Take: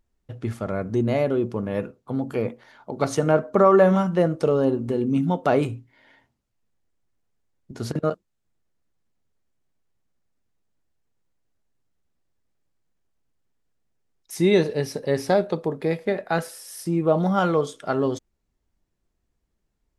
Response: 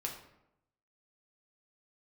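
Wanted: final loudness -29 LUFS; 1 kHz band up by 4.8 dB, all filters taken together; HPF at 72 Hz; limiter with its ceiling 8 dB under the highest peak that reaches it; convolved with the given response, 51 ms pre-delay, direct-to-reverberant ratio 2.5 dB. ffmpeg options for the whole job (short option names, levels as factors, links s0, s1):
-filter_complex "[0:a]highpass=72,equalizer=f=1000:t=o:g=6.5,alimiter=limit=0.355:level=0:latency=1,asplit=2[s0][s1];[1:a]atrim=start_sample=2205,adelay=51[s2];[s1][s2]afir=irnorm=-1:irlink=0,volume=0.708[s3];[s0][s3]amix=inputs=2:normalize=0,volume=0.422"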